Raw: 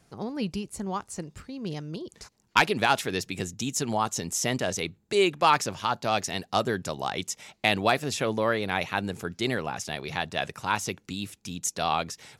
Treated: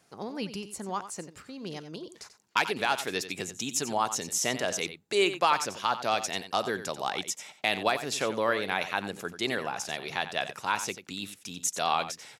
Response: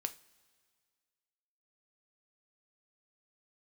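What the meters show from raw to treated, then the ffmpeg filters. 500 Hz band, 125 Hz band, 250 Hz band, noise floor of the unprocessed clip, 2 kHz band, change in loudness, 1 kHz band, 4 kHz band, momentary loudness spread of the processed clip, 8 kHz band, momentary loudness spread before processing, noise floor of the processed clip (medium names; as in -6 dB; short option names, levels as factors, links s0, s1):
-2.5 dB, -9.5 dB, -5.5 dB, -68 dBFS, -2.0 dB, -2.0 dB, -2.0 dB, -1.0 dB, 13 LU, 0.0 dB, 13 LU, -59 dBFS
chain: -filter_complex "[0:a]highpass=f=390:p=1,alimiter=limit=0.251:level=0:latency=1:release=211,asplit=2[s0][s1];[s1]aecho=0:1:90:0.251[s2];[s0][s2]amix=inputs=2:normalize=0"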